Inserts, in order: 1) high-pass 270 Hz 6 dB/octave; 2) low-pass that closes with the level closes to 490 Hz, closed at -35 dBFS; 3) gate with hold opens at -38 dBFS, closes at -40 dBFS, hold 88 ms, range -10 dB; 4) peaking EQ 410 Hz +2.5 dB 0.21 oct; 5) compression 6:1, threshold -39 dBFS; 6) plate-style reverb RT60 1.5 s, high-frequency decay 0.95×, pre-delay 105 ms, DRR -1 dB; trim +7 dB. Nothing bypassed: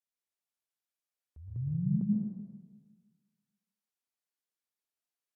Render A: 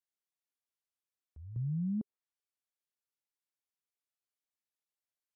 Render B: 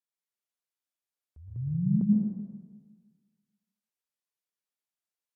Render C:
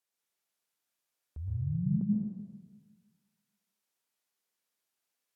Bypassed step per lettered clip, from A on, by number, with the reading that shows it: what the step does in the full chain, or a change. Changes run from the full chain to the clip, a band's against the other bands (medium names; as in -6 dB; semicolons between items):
6, crest factor change -5.5 dB; 5, mean gain reduction 2.5 dB; 3, momentary loudness spread change +2 LU